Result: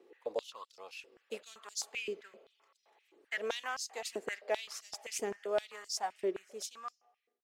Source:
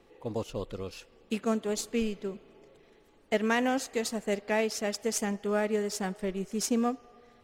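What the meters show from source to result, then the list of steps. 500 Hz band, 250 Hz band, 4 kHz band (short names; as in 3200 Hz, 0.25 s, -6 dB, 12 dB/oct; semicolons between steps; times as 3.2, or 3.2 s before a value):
-7.5 dB, -20.0 dB, -3.5 dB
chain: ending faded out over 1.27 s; stepped high-pass 7.7 Hz 370–5200 Hz; gain -8.5 dB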